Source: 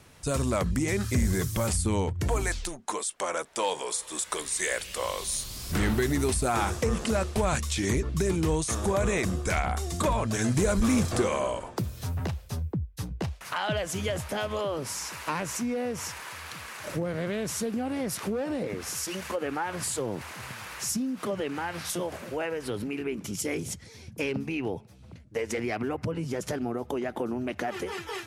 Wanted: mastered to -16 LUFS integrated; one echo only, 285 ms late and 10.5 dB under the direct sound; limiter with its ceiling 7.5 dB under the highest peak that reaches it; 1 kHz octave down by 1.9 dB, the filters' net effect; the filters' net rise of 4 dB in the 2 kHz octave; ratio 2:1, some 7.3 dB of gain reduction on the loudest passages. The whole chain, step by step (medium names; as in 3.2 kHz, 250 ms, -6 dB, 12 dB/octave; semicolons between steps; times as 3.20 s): peaking EQ 1 kHz -4 dB; peaking EQ 2 kHz +6 dB; compression 2:1, threshold -34 dBFS; peak limiter -25.5 dBFS; delay 285 ms -10.5 dB; trim +19.5 dB